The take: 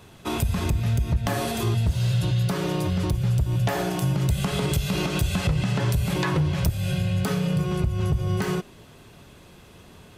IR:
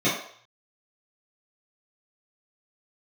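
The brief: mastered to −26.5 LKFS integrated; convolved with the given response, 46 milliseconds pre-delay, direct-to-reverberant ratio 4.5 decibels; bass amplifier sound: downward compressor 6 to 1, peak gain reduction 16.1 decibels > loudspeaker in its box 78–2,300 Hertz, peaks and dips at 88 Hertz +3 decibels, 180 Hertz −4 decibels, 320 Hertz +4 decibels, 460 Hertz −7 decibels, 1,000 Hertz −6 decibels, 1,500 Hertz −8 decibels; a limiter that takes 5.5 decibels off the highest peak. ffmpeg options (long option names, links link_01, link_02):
-filter_complex "[0:a]alimiter=limit=-18dB:level=0:latency=1,asplit=2[link_01][link_02];[1:a]atrim=start_sample=2205,adelay=46[link_03];[link_02][link_03]afir=irnorm=-1:irlink=0,volume=-20dB[link_04];[link_01][link_04]amix=inputs=2:normalize=0,acompressor=threshold=-33dB:ratio=6,highpass=frequency=78:width=0.5412,highpass=frequency=78:width=1.3066,equalizer=frequency=88:width_type=q:width=4:gain=3,equalizer=frequency=180:width_type=q:width=4:gain=-4,equalizer=frequency=320:width_type=q:width=4:gain=4,equalizer=frequency=460:width_type=q:width=4:gain=-7,equalizer=frequency=1000:width_type=q:width=4:gain=-6,equalizer=frequency=1500:width_type=q:width=4:gain=-8,lowpass=frequency=2300:width=0.5412,lowpass=frequency=2300:width=1.3066,volume=10.5dB"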